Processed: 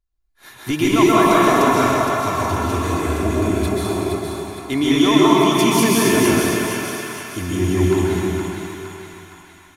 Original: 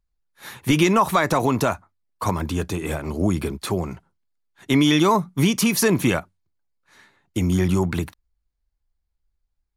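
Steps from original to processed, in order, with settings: comb 2.9 ms, depth 45%; on a send: two-band feedback delay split 770 Hz, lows 161 ms, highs 464 ms, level -5 dB; on the sum: plate-style reverb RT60 2.5 s, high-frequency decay 0.8×, pre-delay 115 ms, DRR -7 dB; trim -5 dB

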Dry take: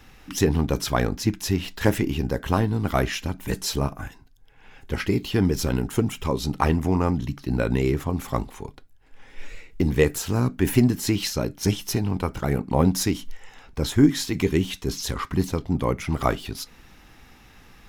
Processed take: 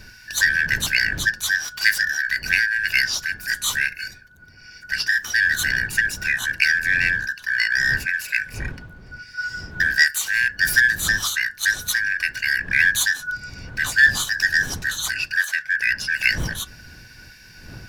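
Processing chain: four frequency bands reordered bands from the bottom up 3142; wind noise 120 Hz -26 dBFS; in parallel at -8.5 dB: one-sided clip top -17.5 dBFS; on the sum: tilt shelf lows -9.5 dB; trim -5.5 dB

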